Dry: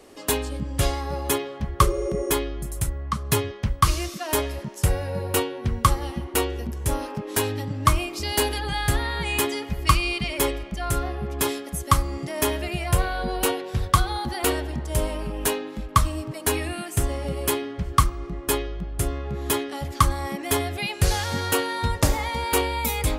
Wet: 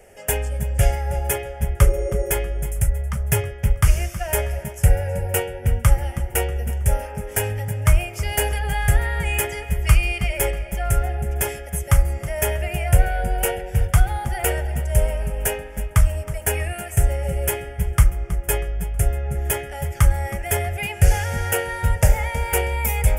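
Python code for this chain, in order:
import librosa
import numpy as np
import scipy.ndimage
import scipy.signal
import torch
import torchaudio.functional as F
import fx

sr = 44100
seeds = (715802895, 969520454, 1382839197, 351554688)

y = fx.low_shelf(x, sr, hz=110.0, db=6.0)
y = fx.fixed_phaser(y, sr, hz=1100.0, stages=6)
y = fx.echo_feedback(y, sr, ms=320, feedback_pct=37, wet_db=-15.0)
y = F.gain(torch.from_numpy(y), 3.5).numpy()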